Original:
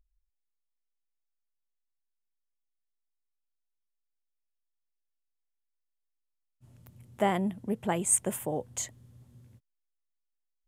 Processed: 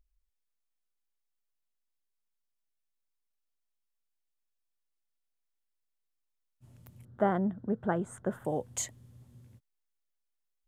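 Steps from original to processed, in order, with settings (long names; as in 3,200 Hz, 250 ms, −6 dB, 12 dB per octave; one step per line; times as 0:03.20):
0:07.05–0:08.45: drawn EQ curve 640 Hz 0 dB, 960 Hz −4 dB, 1,500 Hz +6 dB, 2,400 Hz −22 dB, 3,600 Hz −12 dB, 9,000 Hz −27 dB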